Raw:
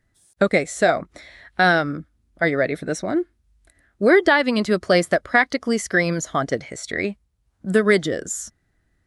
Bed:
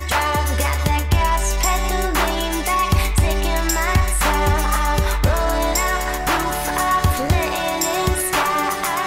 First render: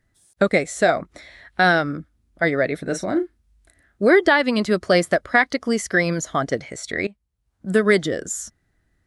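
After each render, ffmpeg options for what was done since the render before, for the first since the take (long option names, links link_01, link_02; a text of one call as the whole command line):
ffmpeg -i in.wav -filter_complex "[0:a]asettb=1/sr,asplit=3[link_01][link_02][link_03];[link_01]atrim=end=2.824[link_04];[link_02]atrim=start=2.82:end=4.05,asetpts=PTS-STARTPTS,afade=type=in:duration=0.004:curve=qsin,afade=type=out:start_time=1.226:duration=0.004:curve=qsin,asplit=2[link_05][link_06];[link_06]adelay=36,volume=-9dB[link_07];[link_05][link_07]amix=inputs=2:normalize=0,atrim=end_sample=54243[link_08];[link_03]atrim=start=4.046[link_09];[link_04][link_08]acrossfade=duration=0.004:curve1=hsin:curve2=qsin[link_10];[link_10][link_09]acrossfade=duration=0.004:curve1=qsin:curve2=hsin,asplit=2[link_11][link_12];[link_11]atrim=end=7.07,asetpts=PTS-STARTPTS,afade=type=out:start_time=7.066:duration=0.004:curve=hsin:silence=0.141254[link_13];[link_12]atrim=start=7.07,asetpts=PTS-STARTPTS,afade=type=in:duration=0.74:silence=0.141254[link_14];[link_13][link_14]concat=n=2:v=0:a=1" out.wav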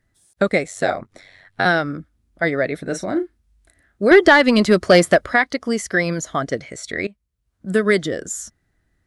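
ffmpeg -i in.wav -filter_complex "[0:a]asettb=1/sr,asplit=3[link_01][link_02][link_03];[link_01]atrim=end=0.674[link_04];[link_02]atrim=start=0.67:end=1.66,asetpts=PTS-STARTPTS,afade=type=in:duration=0.004:curve=qsin,afade=type=out:start_time=0.986:duration=0.004:curve=qsin,aeval=exprs='val(0)*sin(2*PI*47*n/s)':channel_layout=same[link_05];[link_03]atrim=start=1.656[link_06];[link_04][link_05]acrossfade=duration=0.004:curve1=hsin:curve2=qsin[link_07];[link_07][link_06]acrossfade=duration=0.004:curve1=qsin:curve2=hsin,asettb=1/sr,asplit=3[link_08][link_09][link_10];[link_08]atrim=end=4.114[link_11];[link_09]atrim=start=4.11:end=5.34,asetpts=PTS-STARTPTS,afade=type=in:duration=0.004:curve=qsin,afade=type=out:start_time=1.226:duration=0.004:curve=qsin,acontrast=63[link_12];[link_10]atrim=start=5.336[link_13];[link_11][link_12]acrossfade=duration=0.004:curve1=hsin:curve2=qsin[link_14];[link_14][link_13]acrossfade=duration=0.004:curve1=qsin:curve2=hsin,asettb=1/sr,asplit=3[link_15][link_16][link_17];[link_15]atrim=end=6.394[link_18];[link_16]atrim=start=6.39:end=8.06,asetpts=PTS-STARTPTS,afade=type=in:duration=0.004:curve=qsin,afade=type=out:start_time=1.666:duration=0.004:curve=qsin,equalizer=frequency=840:width_type=o:width=0.26:gain=-7.5[link_19];[link_17]atrim=start=8.056[link_20];[link_18][link_19]acrossfade=duration=0.004:curve1=hsin:curve2=qsin[link_21];[link_21][link_20]acrossfade=duration=0.004:curve1=qsin:curve2=hsin" out.wav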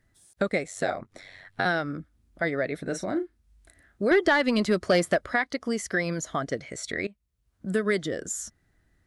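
ffmpeg -i in.wav -af "acompressor=threshold=-37dB:ratio=1.5" out.wav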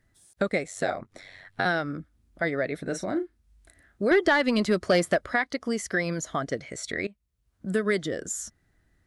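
ffmpeg -i in.wav -af anull out.wav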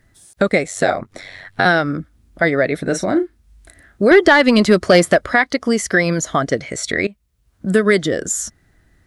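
ffmpeg -i in.wav -af "volume=11.5dB,alimiter=limit=-2dB:level=0:latency=1" out.wav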